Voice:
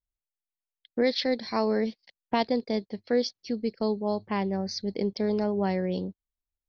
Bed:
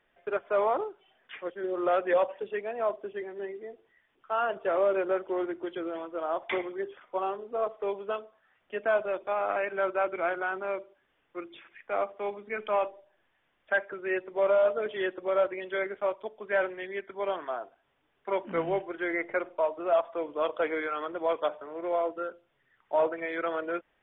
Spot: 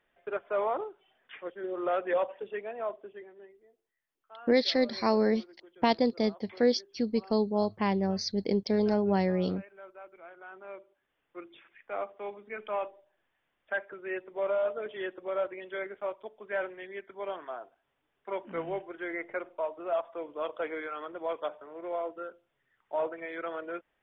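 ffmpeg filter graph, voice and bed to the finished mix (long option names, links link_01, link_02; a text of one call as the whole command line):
ffmpeg -i stem1.wav -i stem2.wav -filter_complex "[0:a]adelay=3500,volume=0.5dB[link_01];[1:a]volume=11.5dB,afade=type=out:start_time=2.64:duration=0.92:silence=0.141254,afade=type=in:start_time=10.32:duration=1.05:silence=0.177828[link_02];[link_01][link_02]amix=inputs=2:normalize=0" out.wav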